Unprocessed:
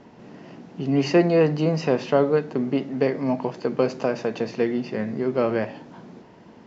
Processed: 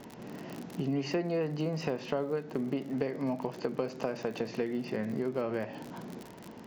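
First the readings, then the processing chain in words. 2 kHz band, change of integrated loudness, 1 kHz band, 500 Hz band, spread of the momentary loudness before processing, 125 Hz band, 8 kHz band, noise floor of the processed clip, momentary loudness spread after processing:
−10.0 dB, −11.0 dB, −10.5 dB, −11.5 dB, 9 LU, −10.0 dB, can't be measured, −49 dBFS, 12 LU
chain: surface crackle 59 per second −33 dBFS
downward compressor 5 to 1, threshold −30 dBFS, peak gain reduction 15.5 dB

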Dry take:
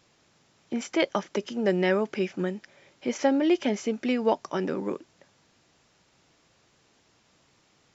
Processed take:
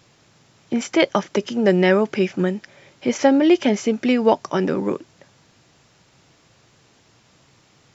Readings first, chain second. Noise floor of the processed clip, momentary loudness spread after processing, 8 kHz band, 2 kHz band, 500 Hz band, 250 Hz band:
−57 dBFS, 11 LU, can't be measured, +7.5 dB, +7.5 dB, +8.5 dB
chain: parametric band 120 Hz +6.5 dB 0.79 octaves
level +7.5 dB

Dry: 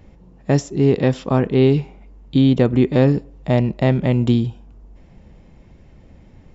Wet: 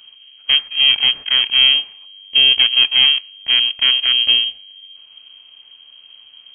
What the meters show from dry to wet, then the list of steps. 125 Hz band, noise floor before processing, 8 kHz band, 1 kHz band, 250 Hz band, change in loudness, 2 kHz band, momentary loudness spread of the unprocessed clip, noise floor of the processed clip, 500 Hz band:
below −30 dB, −48 dBFS, can't be measured, −7.5 dB, below −25 dB, +5.5 dB, +13.0 dB, 7 LU, −46 dBFS, below −20 dB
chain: full-wave rectification
voice inversion scrambler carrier 3,200 Hz

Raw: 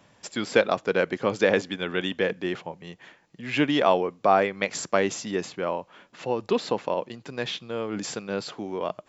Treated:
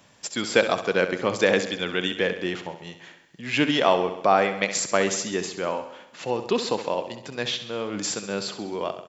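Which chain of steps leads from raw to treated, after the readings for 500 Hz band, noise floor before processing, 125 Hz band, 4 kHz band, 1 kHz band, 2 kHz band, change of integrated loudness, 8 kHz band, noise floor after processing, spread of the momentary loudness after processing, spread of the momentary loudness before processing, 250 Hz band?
+0.5 dB, −62 dBFS, +1.0 dB, +5.0 dB, +1.0 dB, +2.5 dB, +1.5 dB, can't be measured, −53 dBFS, 12 LU, 13 LU, +0.5 dB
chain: high-shelf EQ 3,400 Hz +8.5 dB
on a send: repeating echo 66 ms, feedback 59%, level −11 dB

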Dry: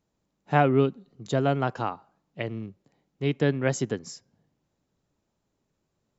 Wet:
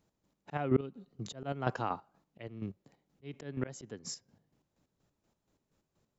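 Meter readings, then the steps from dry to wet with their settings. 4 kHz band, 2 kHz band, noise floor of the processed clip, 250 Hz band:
−9.0 dB, −13.5 dB, −84 dBFS, −10.0 dB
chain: square-wave tremolo 4.2 Hz, depth 60%, duty 40%
volume swells 351 ms
level +2 dB

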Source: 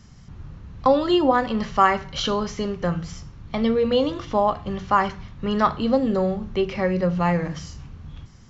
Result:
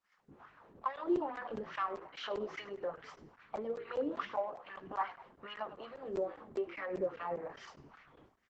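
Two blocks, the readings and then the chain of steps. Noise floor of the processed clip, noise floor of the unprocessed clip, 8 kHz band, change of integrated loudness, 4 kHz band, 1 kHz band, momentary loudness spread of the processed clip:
−72 dBFS, −46 dBFS, can't be measured, −17.0 dB, −20.0 dB, −17.5 dB, 17 LU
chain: downward expander −34 dBFS
mains-hum notches 60/120/180/240/300 Hz
downward compressor 3 to 1, threshold −39 dBFS, peak gain reduction 20.5 dB
mid-hump overdrive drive 16 dB, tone 2,900 Hz, clips at −20 dBFS
two-band tremolo in antiphase 3.7 Hz, depth 70%, crossover 530 Hz
LFO wah 2.4 Hz 330–2,000 Hz, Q 2.6
on a send: echo with shifted repeats 99 ms, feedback 38%, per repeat −47 Hz, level −17 dB
on the sum: regular buffer underruns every 0.20 s, samples 512, zero, from 0:00.96
level +5.5 dB
Opus 10 kbit/s 48,000 Hz

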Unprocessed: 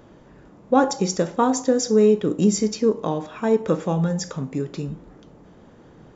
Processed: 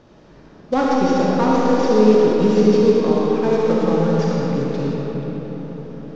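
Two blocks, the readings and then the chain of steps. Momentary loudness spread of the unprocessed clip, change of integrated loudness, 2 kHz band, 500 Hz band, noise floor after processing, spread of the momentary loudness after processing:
11 LU, +4.5 dB, +5.5 dB, +5.5 dB, −46 dBFS, 14 LU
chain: variable-slope delta modulation 32 kbit/s
echo with a time of its own for lows and highs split 490 Hz, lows 722 ms, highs 113 ms, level −13 dB
comb and all-pass reverb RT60 4.8 s, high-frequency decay 0.55×, pre-delay 20 ms, DRR −4.5 dB
level −1 dB

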